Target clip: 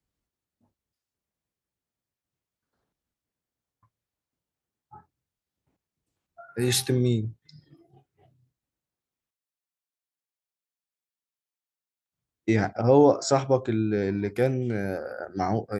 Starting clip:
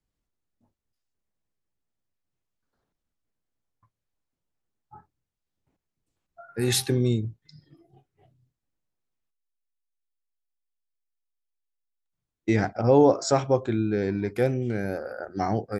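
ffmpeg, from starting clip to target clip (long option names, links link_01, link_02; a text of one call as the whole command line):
ffmpeg -i in.wav -af "highpass=46" out.wav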